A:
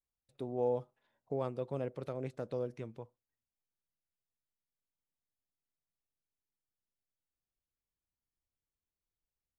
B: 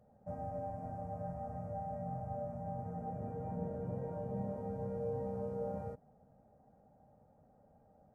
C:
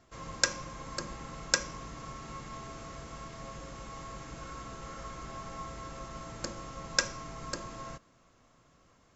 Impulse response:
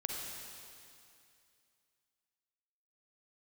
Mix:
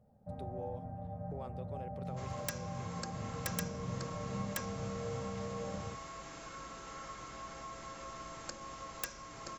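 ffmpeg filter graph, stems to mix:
-filter_complex "[0:a]volume=-2dB[a];[1:a]bass=f=250:g=6,treble=f=4k:g=-12,volume=-4dB[b];[2:a]aeval=exprs='(mod(5.62*val(0)+1,2)-1)/5.62':c=same,adelay=2050,volume=2dB,asplit=2[c][d];[d]volume=-13dB[e];[a][c]amix=inputs=2:normalize=0,highpass=f=460:p=1,acompressor=threshold=-47dB:ratio=2,volume=0dB[f];[e]aecho=0:1:974:1[g];[b][f][g]amix=inputs=3:normalize=0"

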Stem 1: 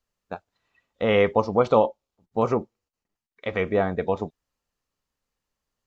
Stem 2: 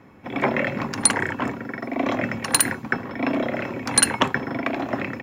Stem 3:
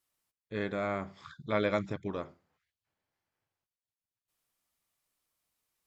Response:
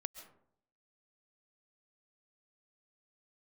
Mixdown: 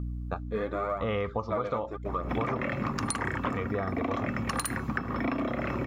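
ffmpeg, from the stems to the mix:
-filter_complex "[0:a]equalizer=f=71:t=o:w=1.2:g=14.5,aeval=exprs='val(0)+0.0126*(sin(2*PI*60*n/s)+sin(2*PI*2*60*n/s)/2+sin(2*PI*3*60*n/s)/3+sin(2*PI*4*60*n/s)/4+sin(2*PI*5*60*n/s)/5)':c=same,volume=-0.5dB[a];[1:a]lowshelf=f=180:g=10.5,alimiter=limit=-10dB:level=0:latency=1:release=218,adelay=2050,volume=2.5dB[b];[2:a]equalizer=f=560:t=o:w=2.7:g=13.5,aeval=exprs='val(0)+0.0112*(sin(2*PI*60*n/s)+sin(2*PI*2*60*n/s)/2+sin(2*PI*3*60*n/s)/3+sin(2*PI*4*60*n/s)/4+sin(2*PI*5*60*n/s)/5)':c=same,aphaser=in_gain=1:out_gain=1:delay=4.5:decay=0.61:speed=0.88:type=triangular,volume=-5dB[c];[a][b][c]amix=inputs=3:normalize=0,equalizer=f=1.2k:w=7:g=14,acompressor=threshold=-27dB:ratio=10"

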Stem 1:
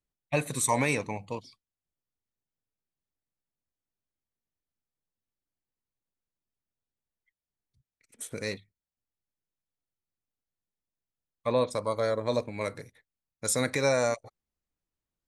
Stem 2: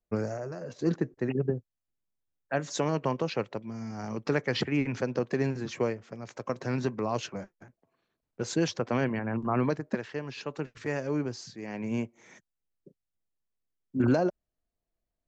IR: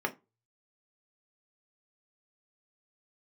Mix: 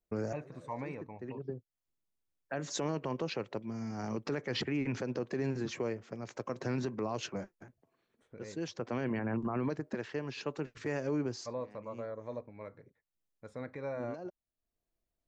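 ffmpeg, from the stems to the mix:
-filter_complex "[0:a]lowpass=1.5k,volume=-13dB,asplit=2[a][b];[1:a]equalizer=f=350:w=1.8:g=3,volume=-2dB[c];[b]apad=whole_len=673691[d];[c][d]sidechaincompress=threshold=-59dB:ratio=5:attack=16:release=410[e];[a][e]amix=inputs=2:normalize=0,alimiter=level_in=1.5dB:limit=-24dB:level=0:latency=1:release=68,volume=-1.5dB"

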